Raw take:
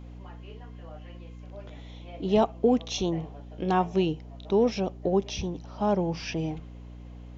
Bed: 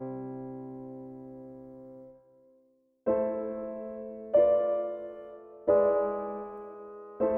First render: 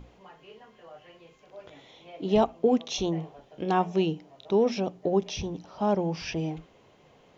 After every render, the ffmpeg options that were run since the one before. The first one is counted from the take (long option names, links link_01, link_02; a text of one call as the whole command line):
ffmpeg -i in.wav -af "bandreject=frequency=60:width_type=h:width=6,bandreject=frequency=120:width_type=h:width=6,bandreject=frequency=180:width_type=h:width=6,bandreject=frequency=240:width_type=h:width=6,bandreject=frequency=300:width_type=h:width=6" out.wav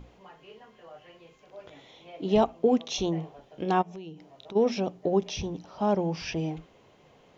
ffmpeg -i in.wav -filter_complex "[0:a]asplit=3[link_01][link_02][link_03];[link_01]afade=type=out:start_time=3.81:duration=0.02[link_04];[link_02]acompressor=threshold=-40dB:ratio=5:attack=3.2:release=140:knee=1:detection=peak,afade=type=in:start_time=3.81:duration=0.02,afade=type=out:start_time=4.55:duration=0.02[link_05];[link_03]afade=type=in:start_time=4.55:duration=0.02[link_06];[link_04][link_05][link_06]amix=inputs=3:normalize=0" out.wav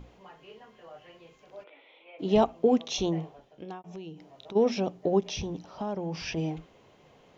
ffmpeg -i in.wav -filter_complex "[0:a]asplit=3[link_01][link_02][link_03];[link_01]afade=type=out:start_time=1.63:duration=0.02[link_04];[link_02]highpass=frequency=380:width=0.5412,highpass=frequency=380:width=1.3066,equalizer=frequency=410:width_type=q:width=4:gain=-7,equalizer=frequency=710:width_type=q:width=4:gain=-8,equalizer=frequency=1100:width_type=q:width=4:gain=-5,equalizer=frequency=1700:width_type=q:width=4:gain=-8,equalizer=frequency=2400:width_type=q:width=4:gain=6,lowpass=frequency=2800:width=0.5412,lowpass=frequency=2800:width=1.3066,afade=type=in:start_time=1.63:duration=0.02,afade=type=out:start_time=2.18:duration=0.02[link_05];[link_03]afade=type=in:start_time=2.18:duration=0.02[link_06];[link_04][link_05][link_06]amix=inputs=3:normalize=0,asplit=3[link_07][link_08][link_09];[link_07]afade=type=out:start_time=5.2:duration=0.02[link_10];[link_08]acompressor=threshold=-29dB:ratio=6:attack=3.2:release=140:knee=1:detection=peak,afade=type=in:start_time=5.2:duration=0.02,afade=type=out:start_time=6.36:duration=0.02[link_11];[link_09]afade=type=in:start_time=6.36:duration=0.02[link_12];[link_10][link_11][link_12]amix=inputs=3:normalize=0,asplit=2[link_13][link_14];[link_13]atrim=end=3.84,asetpts=PTS-STARTPTS,afade=type=out:start_time=3.19:duration=0.65[link_15];[link_14]atrim=start=3.84,asetpts=PTS-STARTPTS,afade=type=in:duration=0.004:curve=hsin[link_16];[link_15][link_16]concat=n=2:v=0:a=1" out.wav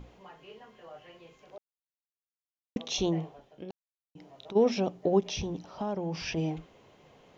ffmpeg -i in.wav -filter_complex "[0:a]asplit=5[link_01][link_02][link_03][link_04][link_05];[link_01]atrim=end=1.58,asetpts=PTS-STARTPTS,afade=type=out:start_time=1.576:duration=0.004:curve=hsin[link_06];[link_02]atrim=start=1.58:end=2.76,asetpts=PTS-STARTPTS,volume=0[link_07];[link_03]atrim=start=2.76:end=3.71,asetpts=PTS-STARTPTS,afade=type=in:duration=0.004:curve=hsin,afade=type=out:start_time=0.946:duration=0.004:curve=hsin[link_08];[link_04]atrim=start=3.71:end=4.15,asetpts=PTS-STARTPTS,volume=0[link_09];[link_05]atrim=start=4.15,asetpts=PTS-STARTPTS,afade=type=in:duration=0.004:curve=hsin[link_10];[link_06][link_07][link_08][link_09][link_10]concat=n=5:v=0:a=1" out.wav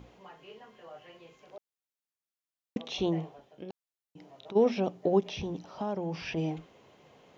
ffmpeg -i in.wav -filter_complex "[0:a]acrossover=split=3900[link_01][link_02];[link_02]acompressor=threshold=-56dB:ratio=4:attack=1:release=60[link_03];[link_01][link_03]amix=inputs=2:normalize=0,highpass=frequency=98:poles=1" out.wav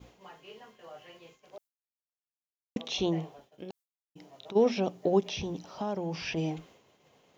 ffmpeg -i in.wav -af "agate=range=-33dB:threshold=-52dB:ratio=3:detection=peak,highshelf=frequency=4800:gain=10.5" out.wav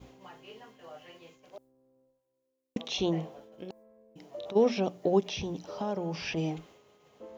ffmpeg -i in.wav -i bed.wav -filter_complex "[1:a]volume=-20dB[link_01];[0:a][link_01]amix=inputs=2:normalize=0" out.wav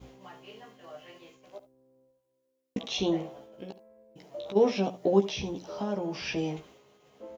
ffmpeg -i in.wav -filter_complex "[0:a]asplit=2[link_01][link_02];[link_02]adelay=15,volume=-5dB[link_03];[link_01][link_03]amix=inputs=2:normalize=0,aecho=1:1:71:0.168" out.wav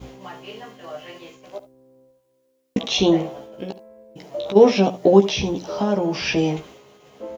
ffmpeg -i in.wav -af "volume=11dB,alimiter=limit=-1dB:level=0:latency=1" out.wav